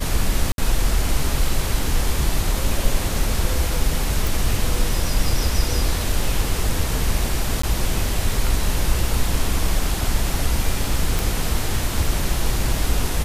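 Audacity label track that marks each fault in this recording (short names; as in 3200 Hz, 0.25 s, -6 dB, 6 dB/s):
0.520000	0.580000	gap 62 ms
4.270000	4.270000	pop
7.620000	7.630000	gap 14 ms
11.190000	11.190000	pop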